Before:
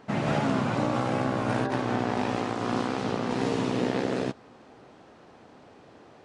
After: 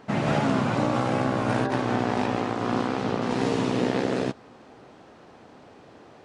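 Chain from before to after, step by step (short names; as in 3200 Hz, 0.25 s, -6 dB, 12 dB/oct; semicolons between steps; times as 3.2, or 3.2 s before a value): 2.26–3.22 high shelf 4600 Hz -6 dB; gain +2.5 dB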